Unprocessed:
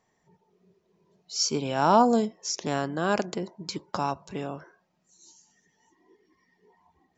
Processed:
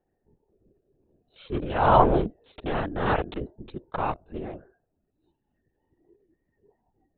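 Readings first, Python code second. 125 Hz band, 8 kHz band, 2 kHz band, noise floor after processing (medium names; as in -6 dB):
+5.0 dB, no reading, +1.0 dB, -77 dBFS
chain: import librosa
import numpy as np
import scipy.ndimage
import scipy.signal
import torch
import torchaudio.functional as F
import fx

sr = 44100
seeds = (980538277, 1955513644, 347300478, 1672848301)

y = fx.wiener(x, sr, points=41)
y = fx.low_shelf(y, sr, hz=140.0, db=-10.5)
y = fx.lpc_vocoder(y, sr, seeds[0], excitation='whisper', order=16)
y = y * 10.0 ** (3.0 / 20.0)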